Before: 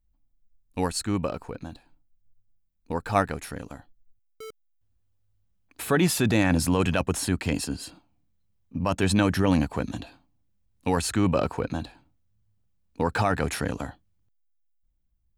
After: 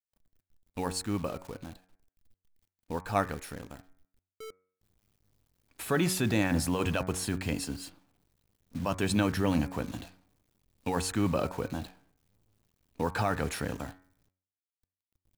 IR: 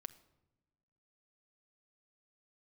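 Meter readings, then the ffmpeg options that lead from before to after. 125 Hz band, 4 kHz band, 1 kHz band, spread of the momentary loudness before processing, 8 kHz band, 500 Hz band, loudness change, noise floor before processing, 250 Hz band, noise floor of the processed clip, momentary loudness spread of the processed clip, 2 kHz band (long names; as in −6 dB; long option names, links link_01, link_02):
−5.5 dB, −5.0 dB, −5.5 dB, 18 LU, −5.0 dB, −5.5 dB, −5.5 dB, −69 dBFS, −5.5 dB, below −85 dBFS, 19 LU, −5.5 dB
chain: -af "acrusher=bits=8:dc=4:mix=0:aa=0.000001,bandreject=frequency=92.56:width_type=h:width=4,bandreject=frequency=185.12:width_type=h:width=4,bandreject=frequency=277.68:width_type=h:width=4,bandreject=frequency=370.24:width_type=h:width=4,bandreject=frequency=462.8:width_type=h:width=4,bandreject=frequency=555.36:width_type=h:width=4,bandreject=frequency=647.92:width_type=h:width=4,bandreject=frequency=740.48:width_type=h:width=4,bandreject=frequency=833.04:width_type=h:width=4,bandreject=frequency=925.6:width_type=h:width=4,bandreject=frequency=1018.16:width_type=h:width=4,bandreject=frequency=1110.72:width_type=h:width=4,bandreject=frequency=1203.28:width_type=h:width=4,bandreject=frequency=1295.84:width_type=h:width=4,bandreject=frequency=1388.4:width_type=h:width=4,bandreject=frequency=1480.96:width_type=h:width=4,bandreject=frequency=1573.52:width_type=h:width=4,bandreject=frequency=1666.08:width_type=h:width=4,bandreject=frequency=1758.64:width_type=h:width=4,bandreject=frequency=1851.2:width_type=h:width=4,bandreject=frequency=1943.76:width_type=h:width=4,bandreject=frequency=2036.32:width_type=h:width=4,bandreject=frequency=2128.88:width_type=h:width=4,bandreject=frequency=2221.44:width_type=h:width=4,bandreject=frequency=2314:width_type=h:width=4,bandreject=frequency=2406.56:width_type=h:width=4,volume=-5dB"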